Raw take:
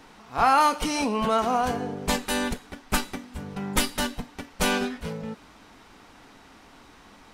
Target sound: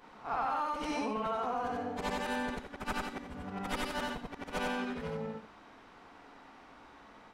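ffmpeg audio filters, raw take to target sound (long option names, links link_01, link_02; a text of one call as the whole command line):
ffmpeg -i in.wav -filter_complex "[0:a]afftfilt=real='re':imag='-im':win_size=8192:overlap=0.75,asplit=2[link_01][link_02];[link_02]highpass=frequency=720:poles=1,volume=11dB,asoftclip=type=tanh:threshold=-11.5dB[link_03];[link_01][link_03]amix=inputs=2:normalize=0,lowpass=frequency=1000:poles=1,volume=-6dB,acompressor=threshold=-31dB:ratio=6" out.wav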